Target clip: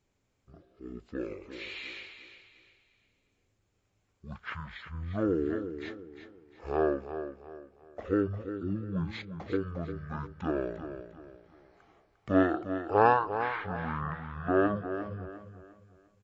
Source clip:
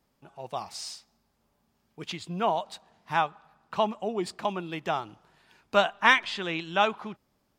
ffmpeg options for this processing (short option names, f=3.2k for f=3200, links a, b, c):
-af "aecho=1:1:164|328|492|656:0.316|0.108|0.0366|0.0124,asetrate=20595,aresample=44100,volume=-3.5dB"